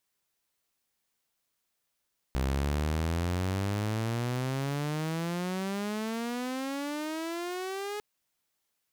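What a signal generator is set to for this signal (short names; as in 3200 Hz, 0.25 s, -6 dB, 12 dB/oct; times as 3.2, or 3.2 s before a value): gliding synth tone saw, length 5.65 s, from 64.4 Hz, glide +32.5 st, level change -7 dB, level -24 dB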